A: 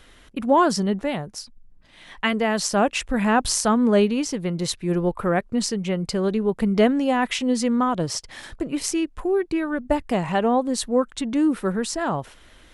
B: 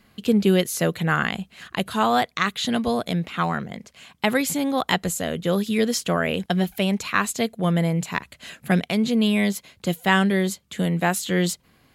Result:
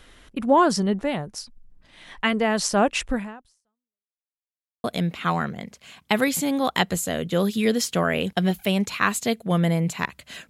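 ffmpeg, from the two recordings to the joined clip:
-filter_complex "[0:a]apad=whole_dur=10.49,atrim=end=10.49,asplit=2[s0][s1];[s0]atrim=end=4.08,asetpts=PTS-STARTPTS,afade=t=out:st=3.13:d=0.95:c=exp[s2];[s1]atrim=start=4.08:end=4.84,asetpts=PTS-STARTPTS,volume=0[s3];[1:a]atrim=start=2.97:end=8.62,asetpts=PTS-STARTPTS,afade=t=in:d=0.004:c=hsin[s4];[s2][s3][s4]concat=n=3:v=0:a=1"

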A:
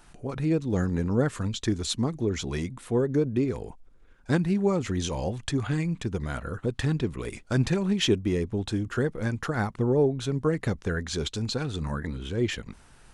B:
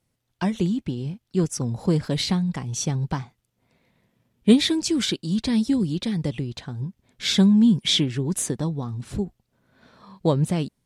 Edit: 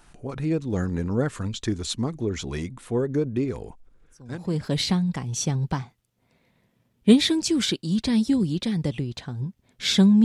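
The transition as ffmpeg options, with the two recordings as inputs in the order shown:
-filter_complex "[0:a]apad=whole_dur=10.24,atrim=end=10.24,atrim=end=4.73,asetpts=PTS-STARTPTS[s0];[1:a]atrim=start=1.39:end=7.64,asetpts=PTS-STARTPTS[s1];[s0][s1]acrossfade=d=0.74:c1=qua:c2=qua"

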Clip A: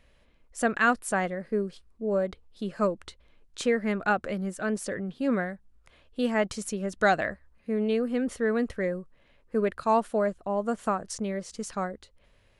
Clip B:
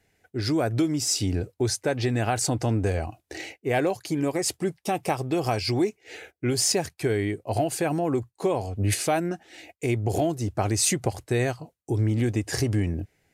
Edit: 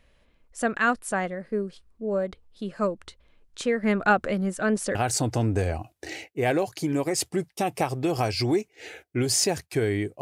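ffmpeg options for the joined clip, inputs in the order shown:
-filter_complex "[0:a]asettb=1/sr,asplit=3[s0][s1][s2];[s0]atrim=end=3.834[s3];[s1]atrim=start=3.83:end=4.95,asetpts=PTS-STARTPTS,afade=t=in:d=0.004:c=qsin,afade=t=out:st=1.116:d=0.004:c=qsin,acontrast=26[s4];[s2]atrim=start=4.946[s5];[s3][s4]acrossfade=d=0.004:c1=hsin:c2=qsin[s6];[s6][s5]acrossfade=d=0.004:c1=qsin:c2=hsin,apad=whole_dur=10.21,atrim=end=10.21,atrim=end=4.952[s7];[1:a]atrim=start=2.228:end=7.49[s8];[s7][s8]acrossfade=d=0.004:c1=hsin:c2=hsin"

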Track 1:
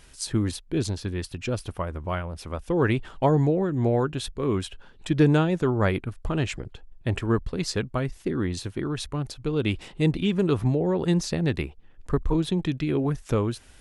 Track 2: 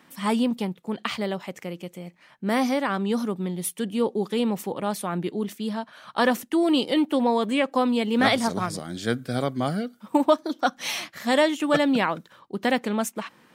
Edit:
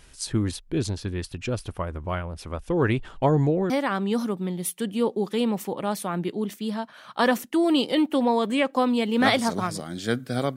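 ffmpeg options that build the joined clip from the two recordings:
-filter_complex "[0:a]apad=whole_dur=10.56,atrim=end=10.56,atrim=end=3.702[s0];[1:a]atrim=start=2.688:end=9.55[s1];[s0][s1]acrossfade=d=0.004:c1=hsin:c2=hsin"

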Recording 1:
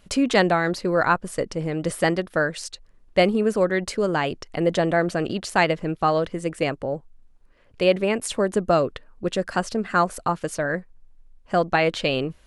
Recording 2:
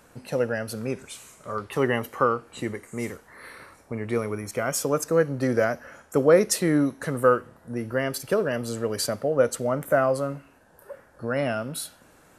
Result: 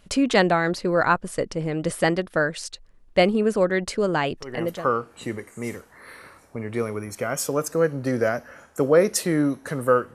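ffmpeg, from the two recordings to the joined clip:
-filter_complex "[0:a]apad=whole_dur=10.14,atrim=end=10.14,atrim=end=4.93,asetpts=PTS-STARTPTS[s0];[1:a]atrim=start=1.73:end=7.5,asetpts=PTS-STARTPTS[s1];[s0][s1]acrossfade=d=0.56:c1=tri:c2=tri"

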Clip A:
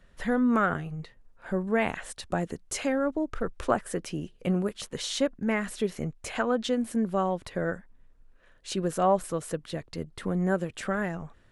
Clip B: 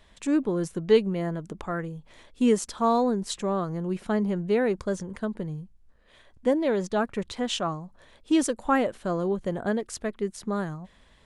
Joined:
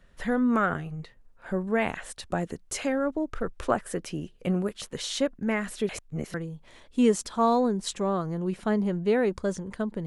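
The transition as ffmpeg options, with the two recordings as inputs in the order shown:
-filter_complex "[0:a]apad=whole_dur=10.06,atrim=end=10.06,asplit=2[s0][s1];[s0]atrim=end=5.892[s2];[s1]atrim=start=5.888:end=6.342,asetpts=PTS-STARTPTS,areverse[s3];[1:a]atrim=start=1.768:end=5.49[s4];[s2][s3]acrossfade=d=0.004:c1=hsin:c2=hsin[s5];[s5][s4]acrossfade=d=0.004:c1=hsin:c2=hsin"

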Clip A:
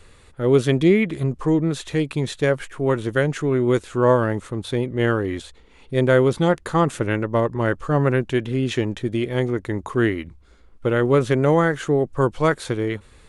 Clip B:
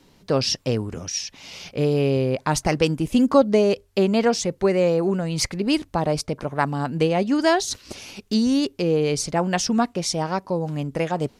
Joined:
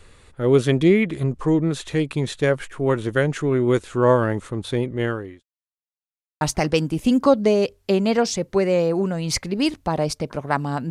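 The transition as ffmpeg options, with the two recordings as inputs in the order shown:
-filter_complex "[0:a]apad=whole_dur=10.9,atrim=end=10.9,asplit=2[s0][s1];[s0]atrim=end=5.43,asetpts=PTS-STARTPTS,afade=t=out:st=4.85:d=0.58[s2];[s1]atrim=start=5.43:end=6.41,asetpts=PTS-STARTPTS,volume=0[s3];[1:a]atrim=start=2.49:end=6.98,asetpts=PTS-STARTPTS,afade=t=in:d=0.004:c=hsin[s4];[s2][s3][s4]concat=n=3:v=0:a=1"

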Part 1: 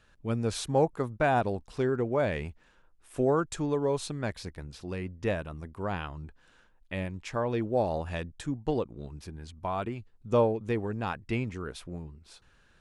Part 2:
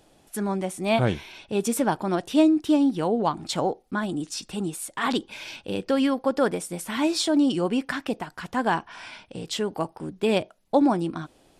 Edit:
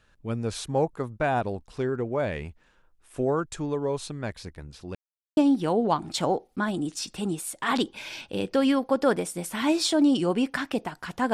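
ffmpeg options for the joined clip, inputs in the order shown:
-filter_complex "[0:a]apad=whole_dur=11.33,atrim=end=11.33,asplit=2[s0][s1];[s0]atrim=end=4.95,asetpts=PTS-STARTPTS,afade=t=out:st=4.946:d=0.004:c=hsin[s2];[s1]atrim=start=4.95:end=5.37,asetpts=PTS-STARTPTS,volume=0[s3];[1:a]atrim=start=2.72:end=8.68,asetpts=PTS-STARTPTS,afade=t=in:d=0.004:c=hsin[s4];[s2][s3][s4]concat=n=3:v=0:a=1"

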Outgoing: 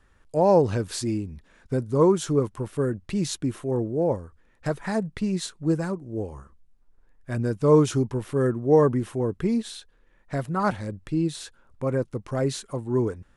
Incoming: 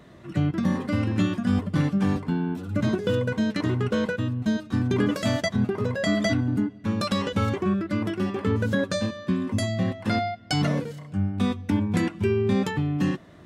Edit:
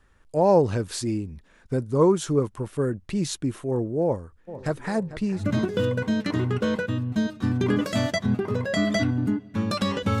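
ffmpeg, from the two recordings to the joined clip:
-filter_complex "[0:a]asplit=3[s0][s1][s2];[s0]afade=t=out:st=4.47:d=0.02[s3];[s1]asplit=2[s4][s5];[s5]adelay=446,lowpass=f=3800:p=1,volume=0.2,asplit=2[s6][s7];[s7]adelay=446,lowpass=f=3800:p=1,volume=0.47,asplit=2[s8][s9];[s9]adelay=446,lowpass=f=3800:p=1,volume=0.47,asplit=2[s10][s11];[s11]adelay=446,lowpass=f=3800:p=1,volume=0.47[s12];[s4][s6][s8][s10][s12]amix=inputs=5:normalize=0,afade=t=in:st=4.47:d=0.02,afade=t=out:st=5.44:d=0.02[s13];[s2]afade=t=in:st=5.44:d=0.02[s14];[s3][s13][s14]amix=inputs=3:normalize=0,apad=whole_dur=10.2,atrim=end=10.2,atrim=end=5.44,asetpts=PTS-STARTPTS[s15];[1:a]atrim=start=2.62:end=7.5,asetpts=PTS-STARTPTS[s16];[s15][s16]acrossfade=d=0.12:c1=tri:c2=tri"

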